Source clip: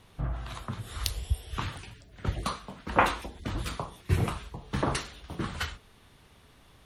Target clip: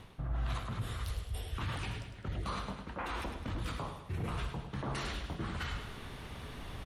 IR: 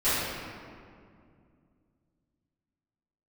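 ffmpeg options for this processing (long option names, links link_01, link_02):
-af "bass=frequency=250:gain=2,treble=frequency=4000:gain=-6,areverse,acompressor=threshold=-43dB:ratio=8,areverse,alimiter=level_in=17dB:limit=-24dB:level=0:latency=1:release=26,volume=-17dB,aecho=1:1:104|208|312|416|520|624:0.398|0.199|0.0995|0.0498|0.0249|0.0124,volume=11dB"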